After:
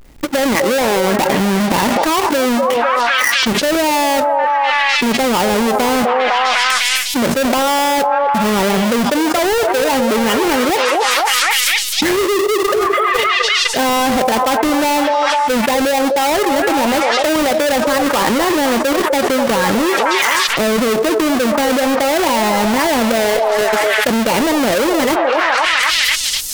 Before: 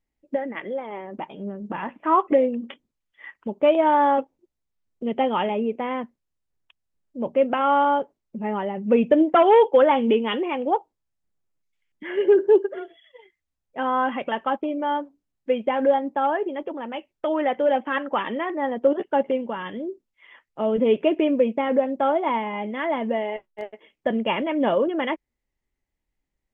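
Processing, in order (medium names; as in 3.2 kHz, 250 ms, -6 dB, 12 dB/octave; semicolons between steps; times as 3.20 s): square wave that keeps the level; repeats whose band climbs or falls 252 ms, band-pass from 600 Hz, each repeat 0.7 oct, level -8 dB; level flattener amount 100%; trim -6 dB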